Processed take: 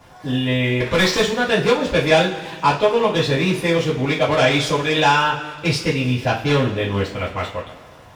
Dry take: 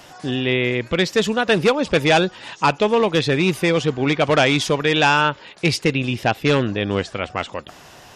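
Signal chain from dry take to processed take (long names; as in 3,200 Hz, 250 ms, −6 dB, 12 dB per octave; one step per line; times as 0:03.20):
slack as between gear wheels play −38.5 dBFS
0:00.80–0:01.21: mid-hump overdrive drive 23 dB, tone 3,500 Hz, clips at −7.5 dBFS
coupled-rooms reverb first 0.28 s, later 1.9 s, from −18 dB, DRR −8 dB
level −8.5 dB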